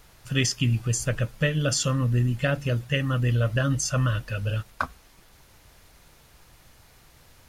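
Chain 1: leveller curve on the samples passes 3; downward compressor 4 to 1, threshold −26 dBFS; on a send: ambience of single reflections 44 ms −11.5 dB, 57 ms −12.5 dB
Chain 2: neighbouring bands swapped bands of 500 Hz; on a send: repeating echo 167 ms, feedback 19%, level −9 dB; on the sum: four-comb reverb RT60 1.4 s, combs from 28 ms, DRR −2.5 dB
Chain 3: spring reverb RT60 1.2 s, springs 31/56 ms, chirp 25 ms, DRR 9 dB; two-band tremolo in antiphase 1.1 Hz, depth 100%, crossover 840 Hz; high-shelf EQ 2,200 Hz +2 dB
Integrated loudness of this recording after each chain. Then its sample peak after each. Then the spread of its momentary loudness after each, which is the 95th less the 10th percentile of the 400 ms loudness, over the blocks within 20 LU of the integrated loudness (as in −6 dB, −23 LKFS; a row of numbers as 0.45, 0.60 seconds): −26.5, −20.5, −29.5 LKFS; −13.5, −6.5, −12.5 dBFS; 5, 8, 9 LU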